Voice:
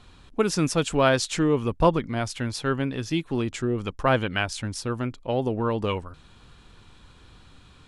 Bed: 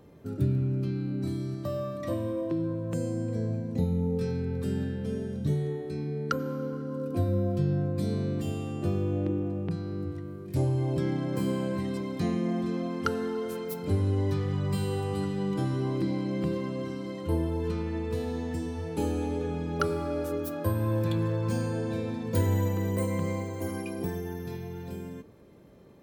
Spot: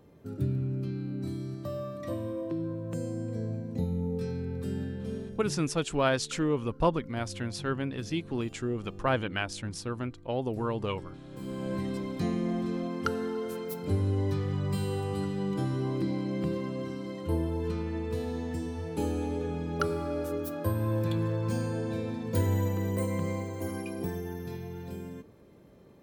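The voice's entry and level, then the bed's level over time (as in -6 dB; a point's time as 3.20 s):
5.00 s, -6.0 dB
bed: 5.16 s -3.5 dB
5.79 s -17 dB
11.24 s -17 dB
11.73 s -1.5 dB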